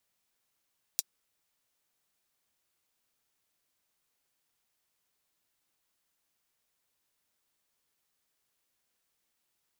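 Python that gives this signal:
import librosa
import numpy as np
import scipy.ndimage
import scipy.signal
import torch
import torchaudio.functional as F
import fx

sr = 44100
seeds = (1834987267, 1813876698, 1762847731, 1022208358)

y = fx.drum_hat(sr, length_s=0.24, from_hz=4900.0, decay_s=0.04)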